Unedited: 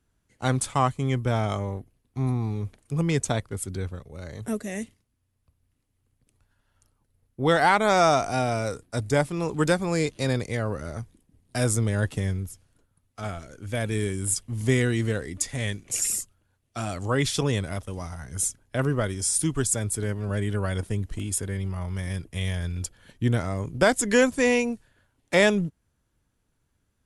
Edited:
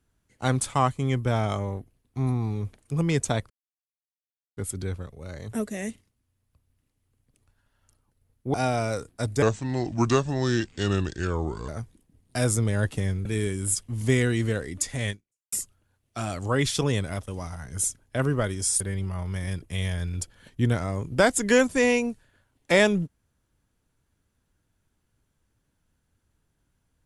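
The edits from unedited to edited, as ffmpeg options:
-filter_complex "[0:a]asplit=8[a][b][c][d][e][f][g][h];[a]atrim=end=3.5,asetpts=PTS-STARTPTS,afade=t=out:st=3.496:d=0.004:c=hsin,apad=pad_dur=1.07[i];[b]atrim=start=3.5:end=7.472,asetpts=PTS-STARTPTS,afade=t=in:d=0.004:c=hsin[j];[c]atrim=start=8.278:end=9.164[k];[d]atrim=start=9.16:end=10.88,asetpts=PTS-STARTPTS,asetrate=33516,aresample=44100,atrim=end_sample=99805,asetpts=PTS-STARTPTS[l];[e]atrim=start=10.876:end=12.452[m];[f]atrim=start=13.848:end=16.12,asetpts=PTS-STARTPTS,afade=t=out:st=1.852:d=0.42:c=exp[n];[g]atrim=start=16.12:end=19.402,asetpts=PTS-STARTPTS,afade=t=in:d=0.004:c=hsin[o];[h]atrim=start=21.428[p];[i][j]concat=n=2:v=0:a=1[q];[q][k]acrossfade=d=0.004:c1=hsin:c2=hsin[r];[r][l]acrossfade=d=0.004:c1=hsin:c2=hsin[s];[s][m]acrossfade=d=0.004:c1=hsin:c2=hsin[t];[n][o]concat=n=2:v=0:a=1[u];[t][u]acrossfade=d=0.004:c1=hsin:c2=hsin[v];[v][p]acrossfade=d=0.004:c1=hsin:c2=hsin"

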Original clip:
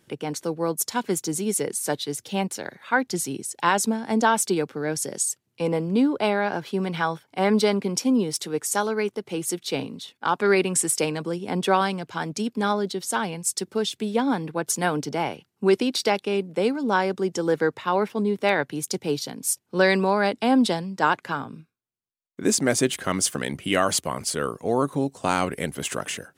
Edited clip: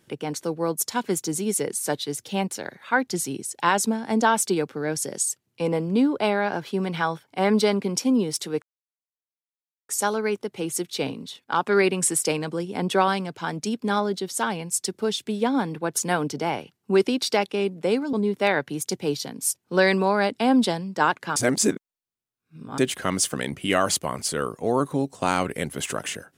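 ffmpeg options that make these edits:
-filter_complex "[0:a]asplit=5[a][b][c][d][e];[a]atrim=end=8.62,asetpts=PTS-STARTPTS,afade=t=out:st=8.616:d=0.004:c=hsin,apad=pad_dur=1.27[f];[b]atrim=start=8.62:end=16.862,asetpts=PTS-STARTPTS,afade=t=in:d=0.004:c=hsin[g];[c]atrim=start=18.148:end=21.382[h];[d]atrim=start=21.378:end=22.802,asetpts=PTS-STARTPTS,areverse[i];[e]atrim=start=22.798[j];[f][g]concat=n=2:v=0:a=1[k];[k][h]acrossfade=d=0.004:c1=hsin:c2=hsin[l];[l][i]acrossfade=d=0.004:c1=hsin:c2=hsin[m];[m][j]acrossfade=d=0.004:c1=hsin:c2=hsin"

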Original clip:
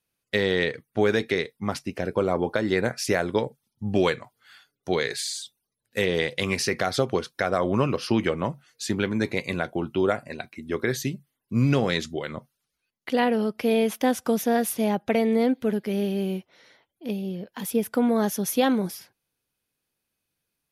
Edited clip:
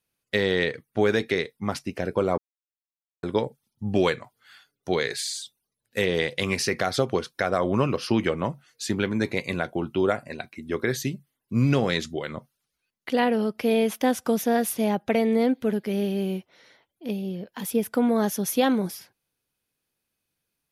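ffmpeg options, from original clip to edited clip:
-filter_complex "[0:a]asplit=3[a][b][c];[a]atrim=end=2.38,asetpts=PTS-STARTPTS,afade=t=out:st=2.376:d=0.004:c=hsin[d];[b]atrim=start=2.38:end=3.23,asetpts=PTS-STARTPTS,volume=0[e];[c]atrim=start=3.23,asetpts=PTS-STARTPTS,afade=t=in:d=0.004:c=hsin[f];[d][e][f]concat=n=3:v=0:a=1"

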